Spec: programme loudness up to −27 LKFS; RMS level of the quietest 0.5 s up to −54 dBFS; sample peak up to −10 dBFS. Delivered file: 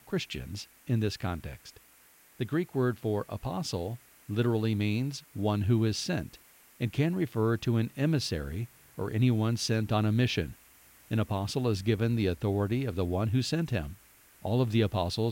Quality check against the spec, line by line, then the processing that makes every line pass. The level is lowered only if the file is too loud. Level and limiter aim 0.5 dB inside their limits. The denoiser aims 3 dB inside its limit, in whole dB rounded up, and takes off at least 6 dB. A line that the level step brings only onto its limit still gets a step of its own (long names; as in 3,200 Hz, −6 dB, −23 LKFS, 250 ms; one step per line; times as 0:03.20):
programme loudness −30.5 LKFS: in spec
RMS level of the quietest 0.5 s −60 dBFS: in spec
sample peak −15.5 dBFS: in spec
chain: no processing needed